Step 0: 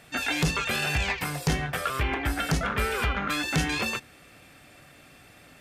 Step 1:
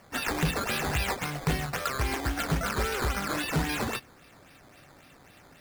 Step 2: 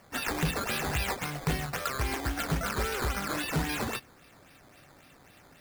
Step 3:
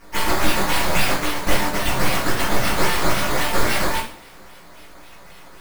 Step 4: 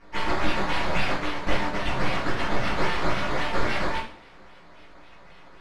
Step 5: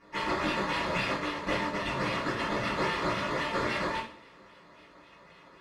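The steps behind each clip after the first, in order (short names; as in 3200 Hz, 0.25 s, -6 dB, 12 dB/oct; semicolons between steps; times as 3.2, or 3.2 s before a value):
decimation with a swept rate 11×, swing 100% 3.7 Hz; gain -2 dB
high shelf 10000 Hz +3 dB; gain -2 dB
full-wave rectifier; two-slope reverb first 0.42 s, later 2.1 s, from -26 dB, DRR -8 dB; gain +6.5 dB
LPF 3700 Hz 12 dB/oct; gain -5 dB
low shelf 68 Hz -8.5 dB; notch comb 760 Hz; gain -2 dB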